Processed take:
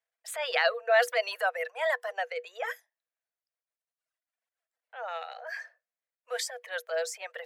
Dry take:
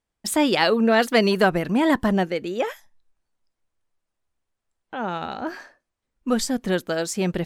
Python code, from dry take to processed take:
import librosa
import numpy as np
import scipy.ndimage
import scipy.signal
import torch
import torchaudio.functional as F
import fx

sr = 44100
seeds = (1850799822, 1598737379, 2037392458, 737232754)

y = fx.dereverb_blind(x, sr, rt60_s=1.4)
y = fx.transient(y, sr, attack_db=-10, sustain_db=5)
y = scipy.signal.sosfilt(scipy.signal.cheby1(6, 9, 470.0, 'highpass', fs=sr, output='sos'), y)